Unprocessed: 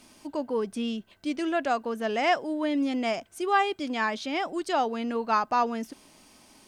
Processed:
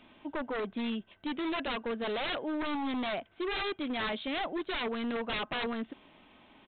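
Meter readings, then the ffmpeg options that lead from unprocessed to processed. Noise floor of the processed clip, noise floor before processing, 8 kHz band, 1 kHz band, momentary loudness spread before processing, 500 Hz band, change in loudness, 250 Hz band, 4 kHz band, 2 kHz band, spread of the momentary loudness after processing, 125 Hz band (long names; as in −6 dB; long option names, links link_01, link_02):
−63 dBFS, −57 dBFS, below −35 dB, −10.5 dB, 8 LU, −6.5 dB, −6.5 dB, −5.0 dB, 0.0 dB, −4.5 dB, 5 LU, can't be measured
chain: -af "lowshelf=frequency=440:gain=-2.5,aresample=8000,aeval=exprs='0.0376*(abs(mod(val(0)/0.0376+3,4)-2)-1)':channel_layout=same,aresample=44100"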